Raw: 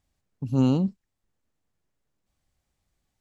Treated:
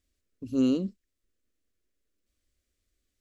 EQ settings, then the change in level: static phaser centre 350 Hz, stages 4; 0.0 dB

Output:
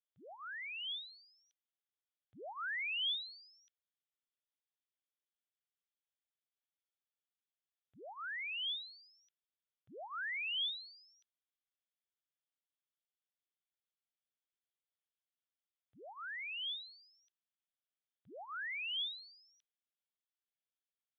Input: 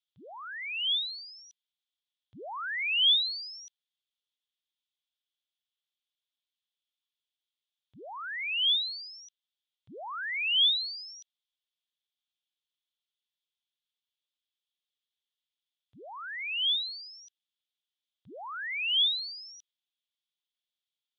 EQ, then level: low-pass 1.6 kHz 12 dB/octave; bass shelf 470 Hz -11 dB; peaking EQ 990 Hz -14 dB 0.3 oct; 0.0 dB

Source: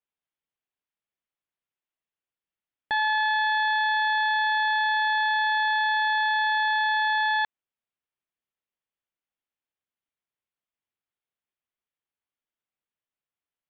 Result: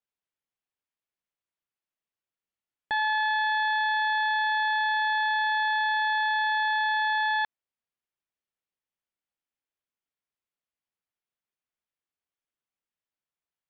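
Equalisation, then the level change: distance through air 54 m; -1.5 dB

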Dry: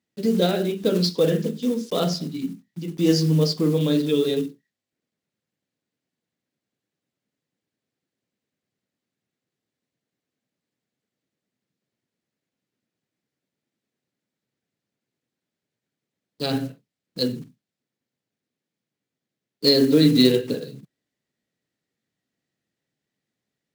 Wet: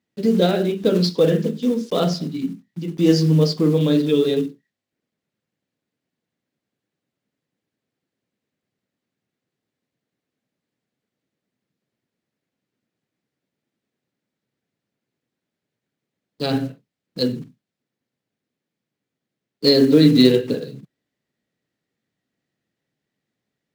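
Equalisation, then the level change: treble shelf 5.2 kHz -8 dB; +3.5 dB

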